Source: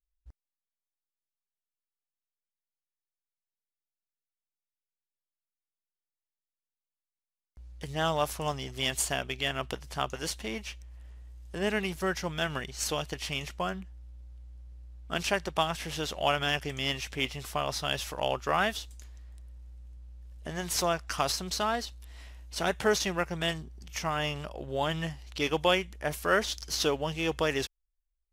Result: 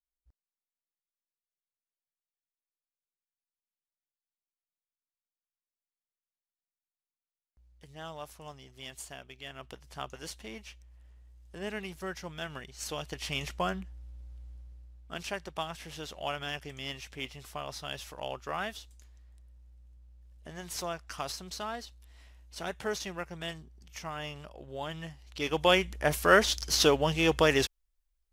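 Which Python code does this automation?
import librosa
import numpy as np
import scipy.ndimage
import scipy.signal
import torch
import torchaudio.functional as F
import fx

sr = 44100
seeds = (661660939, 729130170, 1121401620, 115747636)

y = fx.gain(x, sr, db=fx.line((9.36, -14.5), (10.0, -8.0), (12.76, -8.0), (13.45, 1.0), (14.51, 1.0), (15.16, -8.0), (25.18, -8.0), (25.87, 4.5)))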